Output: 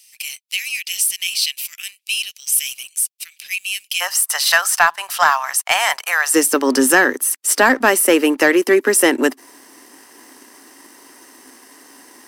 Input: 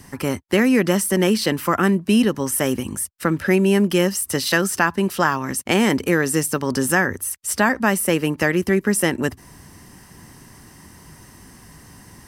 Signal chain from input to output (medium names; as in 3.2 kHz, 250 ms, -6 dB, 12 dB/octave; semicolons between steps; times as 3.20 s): Chebyshev high-pass 2.4 kHz, order 5, from 4.00 s 680 Hz, from 6.34 s 260 Hz; waveshaping leveller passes 1; trim +4 dB